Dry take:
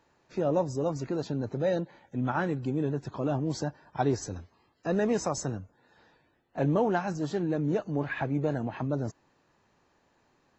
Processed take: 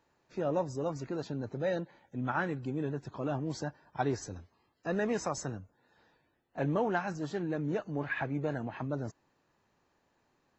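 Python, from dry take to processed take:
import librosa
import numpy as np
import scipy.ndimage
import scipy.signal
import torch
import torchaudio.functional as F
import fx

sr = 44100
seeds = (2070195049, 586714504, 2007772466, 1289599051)

y = fx.dynamic_eq(x, sr, hz=1800.0, q=0.77, threshold_db=-44.0, ratio=4.0, max_db=6)
y = y * librosa.db_to_amplitude(-5.5)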